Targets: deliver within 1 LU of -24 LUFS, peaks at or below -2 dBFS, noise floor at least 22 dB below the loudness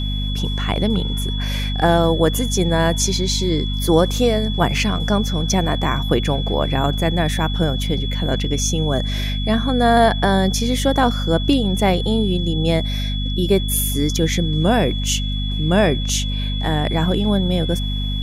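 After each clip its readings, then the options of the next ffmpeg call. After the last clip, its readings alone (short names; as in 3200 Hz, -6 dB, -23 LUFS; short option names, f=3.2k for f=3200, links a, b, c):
hum 50 Hz; harmonics up to 250 Hz; hum level -20 dBFS; steady tone 3400 Hz; tone level -28 dBFS; loudness -19.0 LUFS; peak -1.5 dBFS; loudness target -24.0 LUFS
-> -af "bandreject=f=50:t=h:w=6,bandreject=f=100:t=h:w=6,bandreject=f=150:t=h:w=6,bandreject=f=200:t=h:w=6,bandreject=f=250:t=h:w=6"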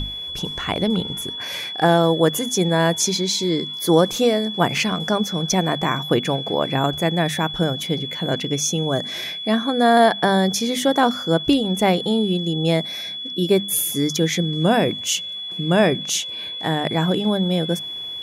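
hum none; steady tone 3400 Hz; tone level -28 dBFS
-> -af "bandreject=f=3.4k:w=30"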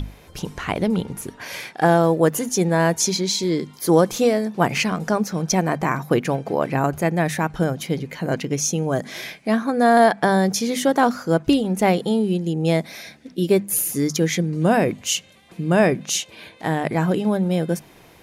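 steady tone none; loudness -20.5 LUFS; peak -3.0 dBFS; loudness target -24.0 LUFS
-> -af "volume=-3.5dB"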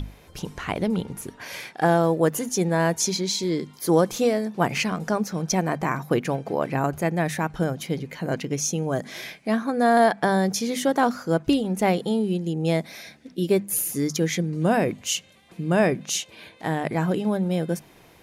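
loudness -24.0 LUFS; peak -6.5 dBFS; noise floor -52 dBFS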